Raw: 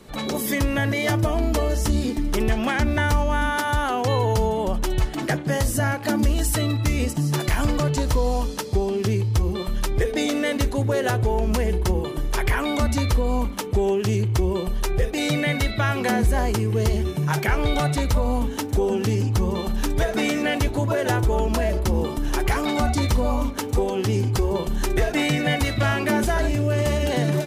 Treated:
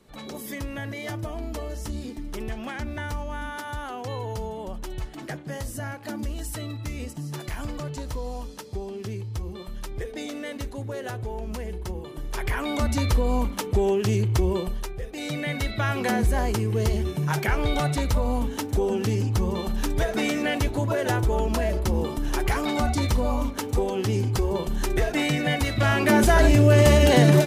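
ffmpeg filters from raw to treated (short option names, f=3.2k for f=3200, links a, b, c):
-af "volume=18.5dB,afade=t=in:st=12.05:d=1.11:silence=0.316228,afade=t=out:st=14.55:d=0.4:silence=0.237137,afade=t=in:st=14.95:d=1.02:silence=0.281838,afade=t=in:st=25.71:d=0.84:silence=0.375837"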